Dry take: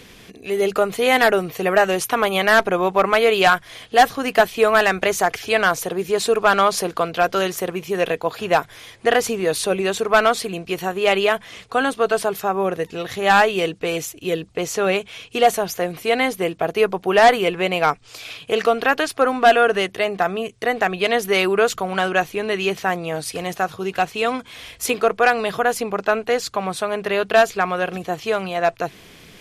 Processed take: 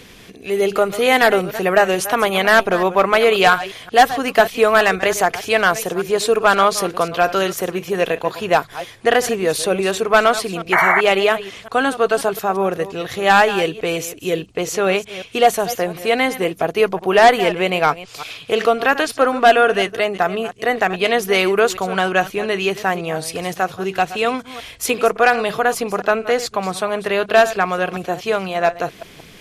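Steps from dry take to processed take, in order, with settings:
delay that plays each chunk backwards 177 ms, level −14 dB
sound drawn into the spectrogram noise, 0:10.72–0:11.01, 620–2,300 Hz −16 dBFS
level +2 dB

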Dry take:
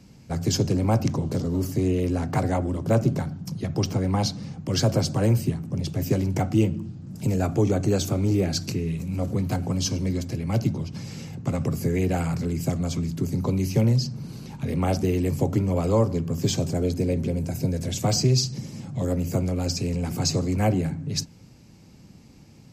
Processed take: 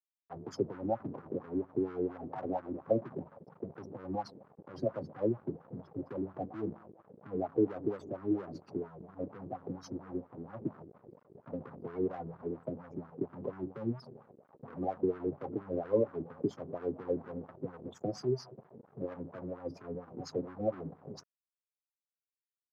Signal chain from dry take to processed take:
gate on every frequency bin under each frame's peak −15 dB strong
on a send: bucket-brigade delay 411 ms, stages 2,048, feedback 35%, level −21.5 dB
on the sum: dead-zone distortion −37 dBFS
LFO wah 4.3 Hz 330–1,400 Hz, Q 2.9

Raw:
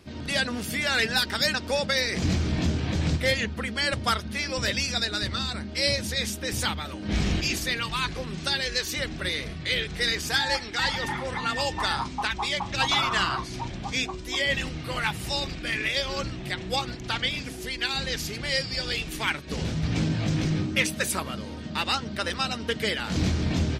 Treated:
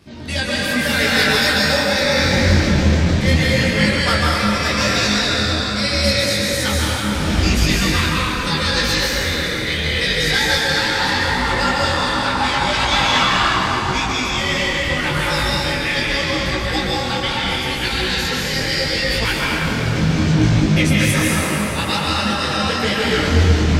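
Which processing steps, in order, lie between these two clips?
convolution reverb RT60 4.5 s, pre-delay 122 ms, DRR −6.5 dB
micro pitch shift up and down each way 27 cents
level +6.5 dB

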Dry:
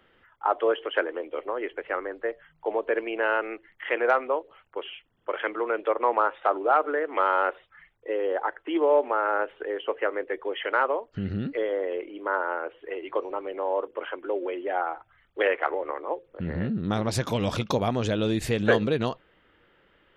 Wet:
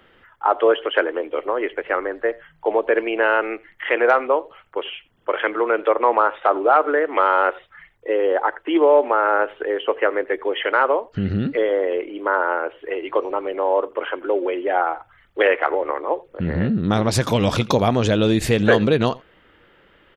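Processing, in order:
in parallel at 0 dB: brickwall limiter −15 dBFS, peak gain reduction 8.5 dB
on the sum: repeating echo 86 ms, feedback 15%, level −24 dB
level +2 dB

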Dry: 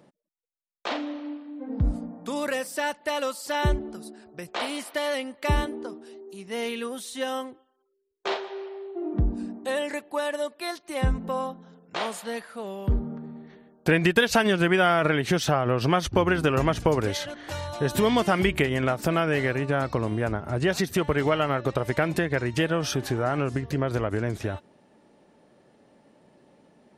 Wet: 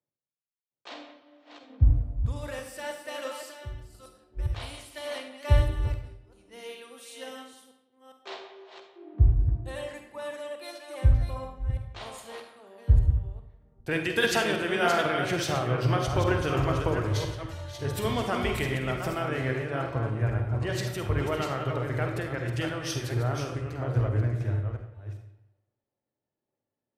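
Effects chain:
delay that plays each chunk backwards 406 ms, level −5 dB
0:03.43–0:04.02: downward compressor 6 to 1, threshold −30 dBFS, peak gain reduction 11.5 dB
low shelf with overshoot 140 Hz +6 dB, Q 3
bucket-brigade delay 181 ms, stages 4,096, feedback 36%, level −12 dB
on a send at −4.5 dB: convolution reverb RT60 0.75 s, pre-delay 46 ms
on the sum: multiband upward and downward expander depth 70%
level −8.5 dB

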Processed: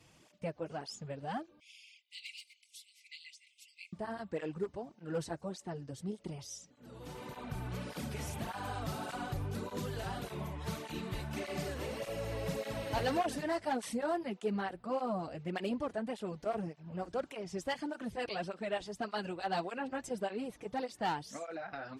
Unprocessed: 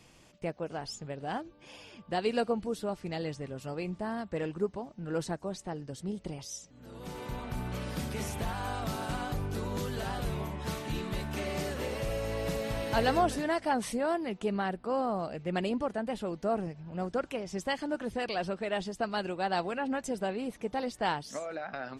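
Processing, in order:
gain into a clipping stage and back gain 22.5 dB
0:01.60–0:03.93: linear-phase brick-wall high-pass 2,000 Hz
through-zero flanger with one copy inverted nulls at 1.7 Hz, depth 5.5 ms
level −1.5 dB

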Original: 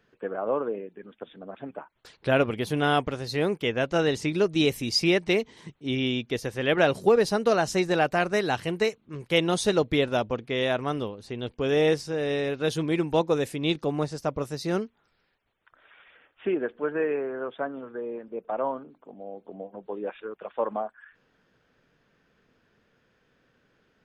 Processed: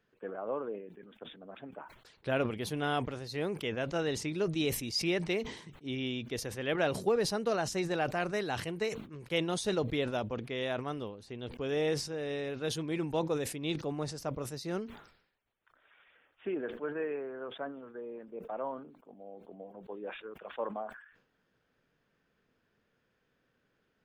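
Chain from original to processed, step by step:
level that may fall only so fast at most 88 dB per second
level −9 dB

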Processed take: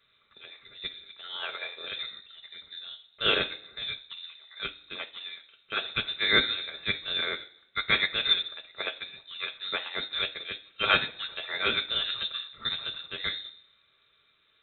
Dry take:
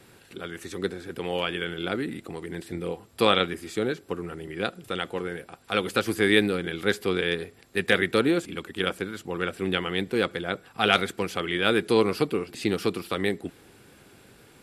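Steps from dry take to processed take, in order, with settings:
convolution reverb RT60 0.65 s, pre-delay 3 ms, DRR 1.5 dB
voice inversion scrambler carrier 3,900 Hz
expander for the loud parts 1.5 to 1, over −42 dBFS

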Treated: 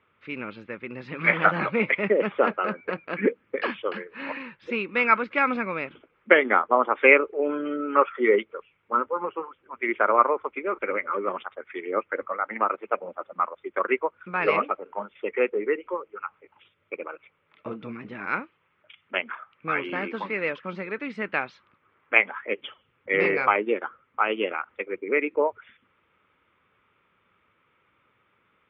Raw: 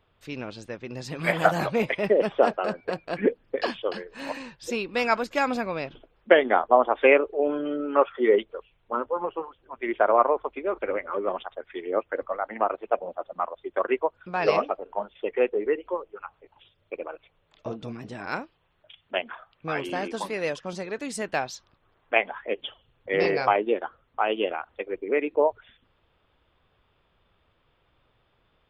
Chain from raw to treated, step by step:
loudspeaker in its box 130–3,000 Hz, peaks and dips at 140 Hz −4 dB, 200 Hz +3 dB, 700 Hz −9 dB, 1,300 Hz +8 dB, 2,200 Hz +9 dB

